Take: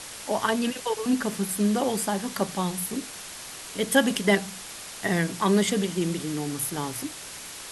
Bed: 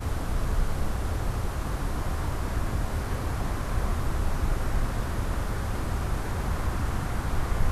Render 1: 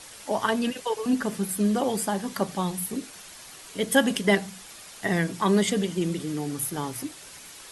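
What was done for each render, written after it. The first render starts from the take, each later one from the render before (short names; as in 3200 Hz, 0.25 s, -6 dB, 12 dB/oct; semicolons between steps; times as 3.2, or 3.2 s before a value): denoiser 7 dB, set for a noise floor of -40 dBFS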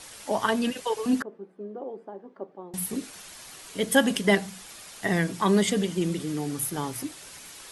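1.22–2.74 ladder band-pass 460 Hz, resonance 40%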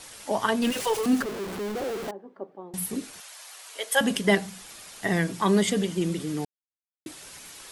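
0.62–2.11 zero-crossing step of -29 dBFS; 3.2–4.01 HPF 560 Hz 24 dB/oct; 6.45–7.06 mute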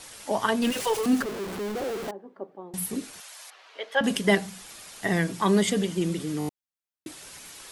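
3.5–4.04 air absorption 250 m; 6.39 stutter in place 0.02 s, 5 plays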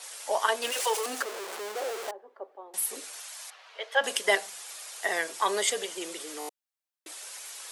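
HPF 480 Hz 24 dB/oct; dynamic EQ 8000 Hz, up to +4 dB, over -50 dBFS, Q 0.91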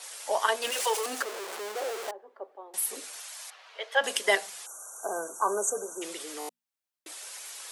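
4.66–6.02 spectral delete 1600–5700 Hz; notches 60/120/180/240 Hz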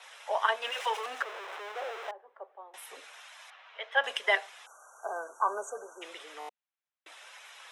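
three-band isolator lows -21 dB, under 530 Hz, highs -21 dB, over 3900 Hz; notch 4500 Hz, Q 5.7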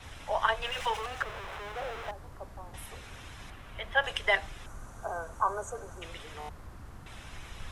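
add bed -19 dB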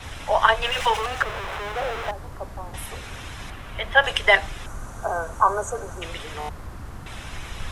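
gain +10 dB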